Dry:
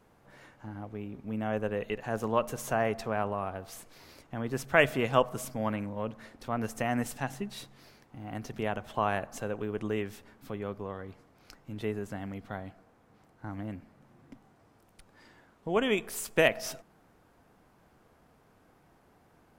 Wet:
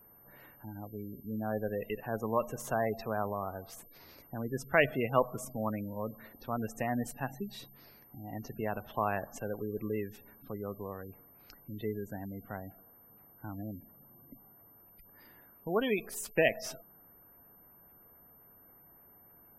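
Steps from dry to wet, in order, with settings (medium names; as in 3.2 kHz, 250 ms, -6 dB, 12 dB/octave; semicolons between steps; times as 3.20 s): spectral gate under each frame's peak -20 dB strong; whistle 13 kHz -55 dBFS; trim -2.5 dB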